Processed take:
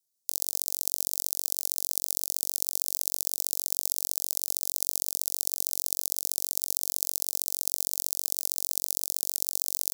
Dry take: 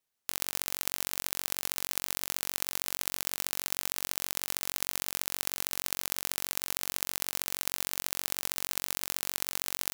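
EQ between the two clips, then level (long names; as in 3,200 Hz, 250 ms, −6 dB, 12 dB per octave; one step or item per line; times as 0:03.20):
Chebyshev band-stop filter 580–5,100 Hz, order 2
high-shelf EQ 2,600 Hz +11 dB
−4.5 dB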